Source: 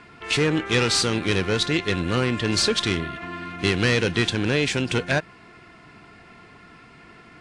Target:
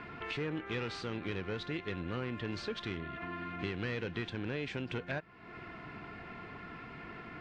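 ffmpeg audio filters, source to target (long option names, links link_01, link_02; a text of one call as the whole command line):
ffmpeg -i in.wav -af "acompressor=threshold=-42dB:ratio=3,lowpass=2800,volume=1.5dB" out.wav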